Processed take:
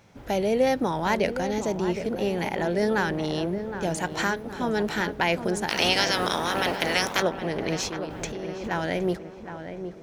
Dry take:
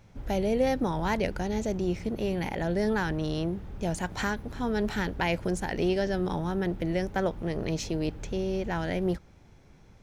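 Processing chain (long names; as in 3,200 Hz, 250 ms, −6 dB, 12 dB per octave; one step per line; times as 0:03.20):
0:05.68–0:07.21: ceiling on every frequency bin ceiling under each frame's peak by 27 dB
high-pass filter 280 Hz 6 dB per octave
0:07.82–0:08.71: compressor whose output falls as the input rises −39 dBFS, ratio −1
feedback echo with a low-pass in the loop 766 ms, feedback 55%, low-pass 1,500 Hz, level −9 dB
level +5 dB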